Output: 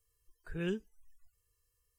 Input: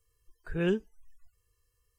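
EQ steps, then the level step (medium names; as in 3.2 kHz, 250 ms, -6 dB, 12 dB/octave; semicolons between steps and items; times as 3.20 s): treble shelf 5.7 kHz +7 dB; dynamic bell 700 Hz, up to -6 dB, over -44 dBFS, Q 0.99; -6.0 dB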